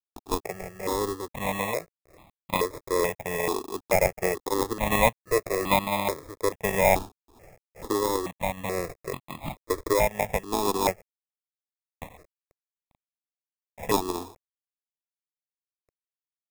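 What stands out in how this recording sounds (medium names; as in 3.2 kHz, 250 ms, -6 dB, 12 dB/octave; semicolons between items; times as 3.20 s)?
a quantiser's noise floor 10-bit, dither none; random-step tremolo; aliases and images of a low sample rate 1.5 kHz, jitter 0%; notches that jump at a steady rate 2.3 Hz 560–1600 Hz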